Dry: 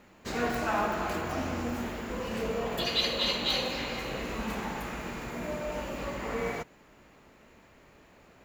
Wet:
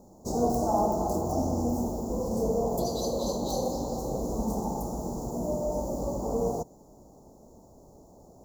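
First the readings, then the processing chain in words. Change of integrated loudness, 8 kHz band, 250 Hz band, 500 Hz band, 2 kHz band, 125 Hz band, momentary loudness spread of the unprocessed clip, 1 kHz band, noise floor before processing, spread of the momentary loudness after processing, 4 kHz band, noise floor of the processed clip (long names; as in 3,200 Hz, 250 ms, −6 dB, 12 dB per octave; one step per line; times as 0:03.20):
+2.0 dB, +5.5 dB, +5.5 dB, +5.0 dB, below −30 dB, +6.0 dB, 10 LU, +2.5 dB, −58 dBFS, 7 LU, −13.5 dB, −54 dBFS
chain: elliptic band-stop filter 820–5,800 Hz, stop band 80 dB
level +6 dB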